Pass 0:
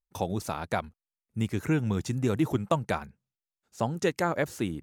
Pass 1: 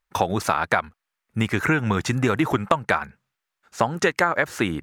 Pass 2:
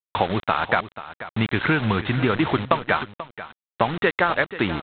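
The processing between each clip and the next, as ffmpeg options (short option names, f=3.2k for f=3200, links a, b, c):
-af "equalizer=f=1.5k:w=0.55:g=14.5,acompressor=threshold=-23dB:ratio=6,volume=6.5dB"
-af "aresample=8000,acrusher=bits=4:mix=0:aa=0.000001,aresample=44100,aecho=1:1:486:0.188"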